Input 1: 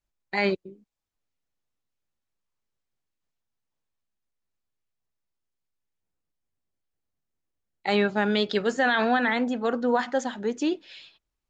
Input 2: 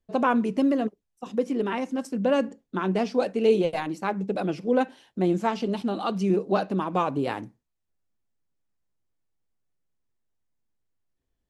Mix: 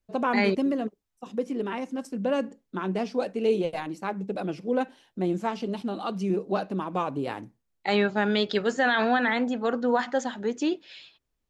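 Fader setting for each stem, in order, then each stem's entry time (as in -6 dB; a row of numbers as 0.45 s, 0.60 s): -0.5 dB, -3.5 dB; 0.00 s, 0.00 s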